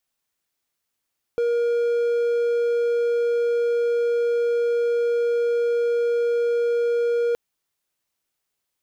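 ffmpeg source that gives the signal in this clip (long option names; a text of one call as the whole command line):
ffmpeg -f lavfi -i "aevalsrc='0.15*(1-4*abs(mod(473*t+0.25,1)-0.5))':duration=5.97:sample_rate=44100" out.wav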